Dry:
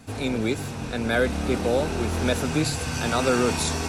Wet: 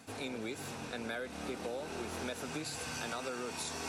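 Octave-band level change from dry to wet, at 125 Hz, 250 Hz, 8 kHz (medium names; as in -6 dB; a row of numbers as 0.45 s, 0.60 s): -21.0 dB, -17.0 dB, -12.0 dB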